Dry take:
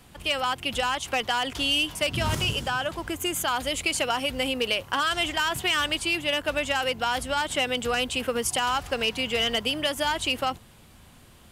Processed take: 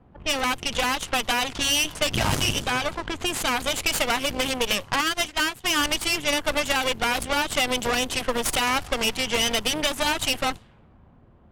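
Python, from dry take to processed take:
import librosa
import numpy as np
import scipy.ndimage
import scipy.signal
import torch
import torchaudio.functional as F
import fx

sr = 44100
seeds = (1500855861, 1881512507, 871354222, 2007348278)

y = fx.cheby_harmonics(x, sr, harmonics=(6,), levels_db=(-9,), full_scale_db=-13.0)
y = fx.env_lowpass(y, sr, base_hz=820.0, full_db=-21.0)
y = fx.upward_expand(y, sr, threshold_db=-32.0, expansion=2.5, at=(5.01, 5.76))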